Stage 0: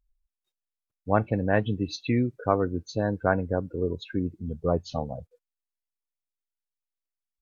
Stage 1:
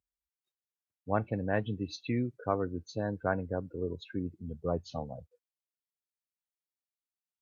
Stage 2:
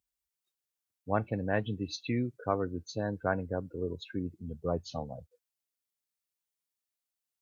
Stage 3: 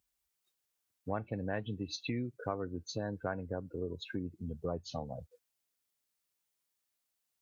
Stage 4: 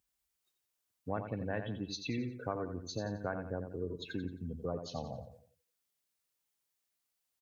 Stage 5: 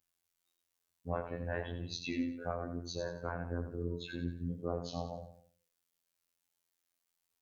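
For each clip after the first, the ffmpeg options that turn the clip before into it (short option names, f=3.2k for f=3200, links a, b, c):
-af "highpass=f=67:w=0.5412,highpass=f=67:w=1.3066,volume=-7dB"
-af "highshelf=f=3.7k:g=6.5"
-af "acompressor=threshold=-43dB:ratio=2.5,volume=5dB"
-af "aecho=1:1:88|176|264|352:0.398|0.147|0.0545|0.0202,volume=-1dB"
-af "flanger=delay=18.5:depth=5.9:speed=1.1,afftfilt=real='hypot(re,im)*cos(PI*b)':imag='0':win_size=2048:overlap=0.75,flanger=delay=5.1:depth=8.7:regen=87:speed=0.37:shape=sinusoidal,volume=11dB"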